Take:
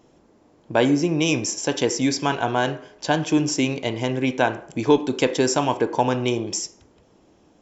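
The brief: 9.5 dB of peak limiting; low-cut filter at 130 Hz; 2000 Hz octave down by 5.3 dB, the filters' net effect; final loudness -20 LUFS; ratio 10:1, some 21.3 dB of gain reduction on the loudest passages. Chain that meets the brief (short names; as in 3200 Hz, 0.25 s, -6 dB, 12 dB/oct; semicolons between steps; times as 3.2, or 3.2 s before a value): HPF 130 Hz; bell 2000 Hz -7.5 dB; compressor 10:1, threshold -33 dBFS; gain +19 dB; limiter -9 dBFS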